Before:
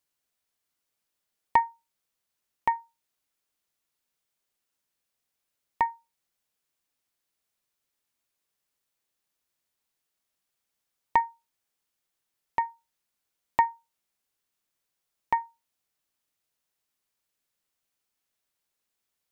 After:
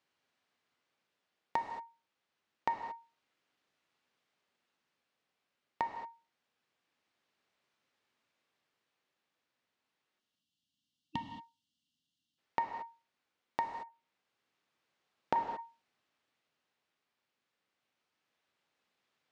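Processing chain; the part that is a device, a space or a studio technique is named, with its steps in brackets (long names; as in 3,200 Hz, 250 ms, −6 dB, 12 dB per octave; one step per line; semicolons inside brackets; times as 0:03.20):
0:10.20–0:12.38: gain on a spectral selection 310–2,700 Hz −25 dB
0:13.66–0:15.36: treble cut that deepens with the level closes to 700 Hz, closed at −42 dBFS
AM radio (band-pass filter 130–3,300 Hz; downward compressor 6 to 1, threshold −36 dBFS, peak gain reduction 18.5 dB; soft clipping −19 dBFS, distortion −19 dB; amplitude tremolo 0.26 Hz, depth 36%)
reverb whose tail is shaped and stops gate 250 ms flat, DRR 4.5 dB
level +7 dB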